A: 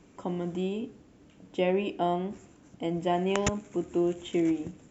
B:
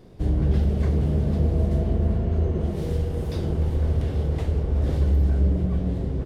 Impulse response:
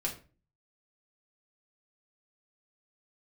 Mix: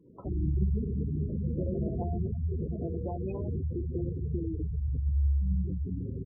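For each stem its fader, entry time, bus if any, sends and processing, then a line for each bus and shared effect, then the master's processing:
-3.0 dB, 0.00 s, no send, echo send -15 dB, compression 12:1, threshold -30 dBFS, peak gain reduction 9.5 dB
-7.5 dB, 0.05 s, no send, echo send -6 dB, treble shelf 2.9 kHz -9 dB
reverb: none
echo: feedback delay 85 ms, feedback 47%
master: spectral gate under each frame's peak -15 dB strong; high-pass 73 Hz

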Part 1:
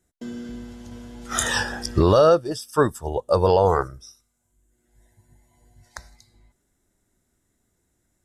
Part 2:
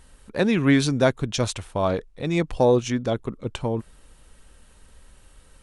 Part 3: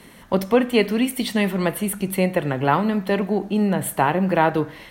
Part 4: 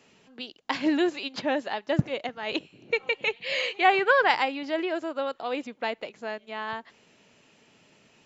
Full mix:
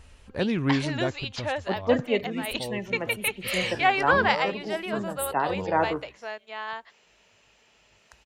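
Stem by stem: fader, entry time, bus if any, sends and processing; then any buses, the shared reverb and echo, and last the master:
-17.0 dB, 2.15 s, no send, none
-2.0 dB, 0.00 s, no send, treble shelf 5.1 kHz -6.5 dB; level rider gain up to 4 dB; peaking EQ 82 Hz +13.5 dB 0.68 oct; auto duck -20 dB, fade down 1.80 s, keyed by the fourth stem
-9.0 dB, 1.35 s, no send, spectral gate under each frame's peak -25 dB strong; high-pass 200 Hz; three bands expanded up and down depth 100%
0.0 dB, 0.00 s, no send, high-pass 200 Hz; peaking EQ 270 Hz -12 dB 1.1 oct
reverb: none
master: none

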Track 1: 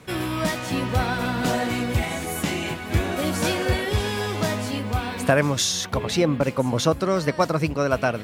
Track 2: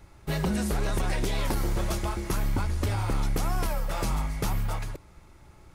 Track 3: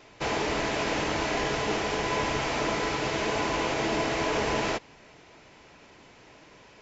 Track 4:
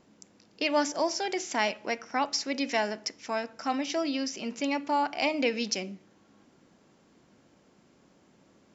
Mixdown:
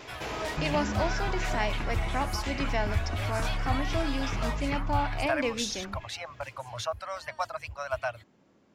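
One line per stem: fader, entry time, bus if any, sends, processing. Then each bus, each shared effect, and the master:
-7.5 dB, 0.00 s, no send, reverb removal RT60 0.6 s; Chebyshev band-stop 110–620 Hz, order 4; treble shelf 8.3 kHz -8 dB
+2.5 dB, 0.30 s, no send, compression, threshold -31 dBFS, peak gain reduction 7.5 dB; LFO low-pass saw down 2.8 Hz 810–3600 Hz; peaking EQ 530 Hz -12 dB 1.4 oct
-6.5 dB, 0.00 s, no send, level flattener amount 50%; auto duck -14 dB, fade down 1.75 s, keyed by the fourth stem
-2.5 dB, 0.00 s, no send, treble shelf 5.1 kHz -10 dB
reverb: none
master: none

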